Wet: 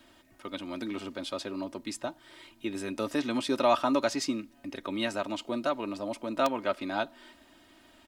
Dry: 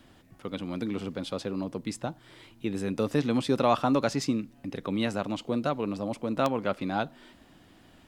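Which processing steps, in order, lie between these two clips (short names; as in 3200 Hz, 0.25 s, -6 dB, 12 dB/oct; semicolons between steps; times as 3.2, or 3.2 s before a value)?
low shelf 320 Hz -10.5 dB; comb 3.2 ms, depth 65%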